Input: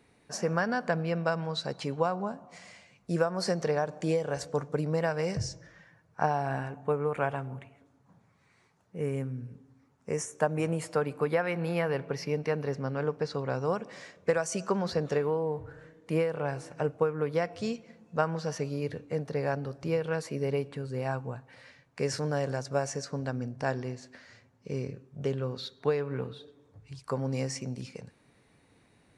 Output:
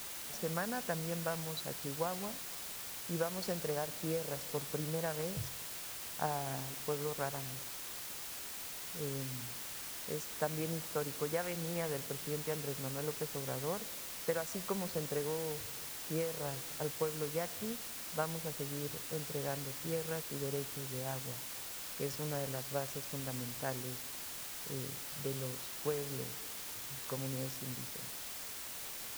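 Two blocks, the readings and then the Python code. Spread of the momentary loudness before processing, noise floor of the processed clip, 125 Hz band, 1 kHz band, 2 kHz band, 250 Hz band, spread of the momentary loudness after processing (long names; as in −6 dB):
12 LU, −45 dBFS, −8.5 dB, −8.5 dB, −7.5 dB, −8.5 dB, 5 LU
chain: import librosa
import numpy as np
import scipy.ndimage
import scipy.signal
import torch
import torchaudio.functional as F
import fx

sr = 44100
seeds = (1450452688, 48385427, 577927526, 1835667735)

y = fx.wiener(x, sr, points=25)
y = fx.quant_dither(y, sr, seeds[0], bits=6, dither='triangular')
y = y * 10.0 ** (-8.5 / 20.0)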